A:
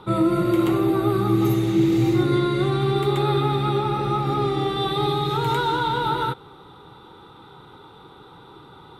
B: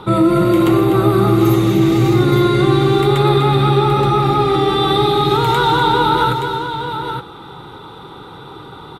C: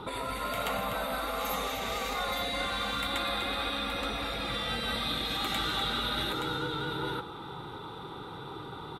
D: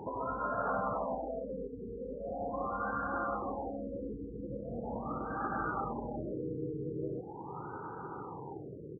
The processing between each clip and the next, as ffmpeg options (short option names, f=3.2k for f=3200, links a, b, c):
-filter_complex "[0:a]asplit=2[a][b];[b]alimiter=limit=-18dB:level=0:latency=1,volume=2.5dB[c];[a][c]amix=inputs=2:normalize=0,aecho=1:1:248|873:0.335|0.398,volume=2.5dB"
-af "afftfilt=real='re*lt(hypot(re,im),0.398)':imag='im*lt(hypot(re,im),0.398)':win_size=1024:overlap=0.75,volume=-7dB"
-af "highpass=f=110:p=1,afftfilt=real='re*lt(b*sr/1024,490*pow(1700/490,0.5+0.5*sin(2*PI*0.41*pts/sr)))':imag='im*lt(b*sr/1024,490*pow(1700/490,0.5+0.5*sin(2*PI*0.41*pts/sr)))':win_size=1024:overlap=0.75"